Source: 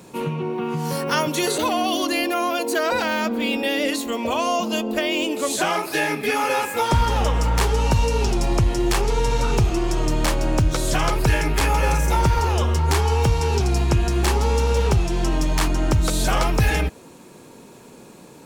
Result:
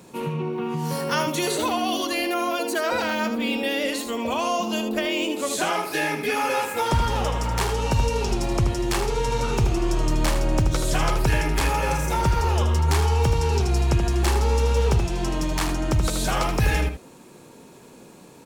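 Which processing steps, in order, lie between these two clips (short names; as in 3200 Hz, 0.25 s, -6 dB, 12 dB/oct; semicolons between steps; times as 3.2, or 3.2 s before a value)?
echo 78 ms -8 dB; gain -3 dB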